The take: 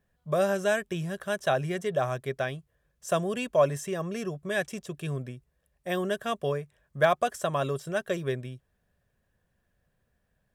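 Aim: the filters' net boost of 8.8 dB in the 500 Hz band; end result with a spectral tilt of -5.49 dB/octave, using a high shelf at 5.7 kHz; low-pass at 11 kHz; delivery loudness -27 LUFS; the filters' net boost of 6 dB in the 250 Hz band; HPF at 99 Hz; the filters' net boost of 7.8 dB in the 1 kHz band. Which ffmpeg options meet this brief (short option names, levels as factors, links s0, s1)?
-af "highpass=99,lowpass=11000,equalizer=f=250:t=o:g=6.5,equalizer=f=500:t=o:g=7.5,equalizer=f=1000:t=o:g=7.5,highshelf=f=5700:g=-8.5,volume=0.562"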